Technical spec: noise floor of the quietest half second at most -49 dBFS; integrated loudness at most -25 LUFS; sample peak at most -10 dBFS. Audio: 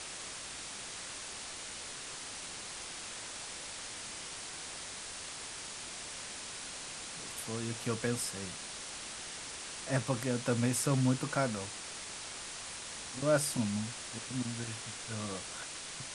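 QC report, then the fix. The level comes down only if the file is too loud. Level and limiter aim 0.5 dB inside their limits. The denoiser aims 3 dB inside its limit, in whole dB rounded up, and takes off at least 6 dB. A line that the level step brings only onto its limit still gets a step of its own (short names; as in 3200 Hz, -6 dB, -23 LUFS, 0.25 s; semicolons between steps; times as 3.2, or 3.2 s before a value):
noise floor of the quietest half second -44 dBFS: fail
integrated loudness -37.0 LUFS: OK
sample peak -16.0 dBFS: OK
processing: denoiser 8 dB, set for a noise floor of -44 dBFS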